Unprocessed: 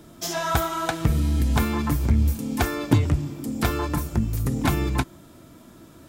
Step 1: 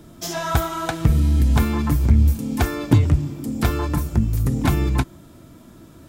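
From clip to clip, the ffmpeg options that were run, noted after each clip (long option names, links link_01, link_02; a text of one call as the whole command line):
ffmpeg -i in.wav -af "lowshelf=frequency=220:gain=6" out.wav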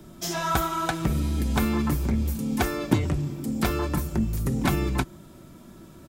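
ffmpeg -i in.wav -filter_complex "[0:a]aecho=1:1:5.3:0.34,acrossover=split=190|6500[link_01][link_02][link_03];[link_01]asoftclip=type=tanh:threshold=-22.5dB[link_04];[link_04][link_02][link_03]amix=inputs=3:normalize=0,volume=-2dB" out.wav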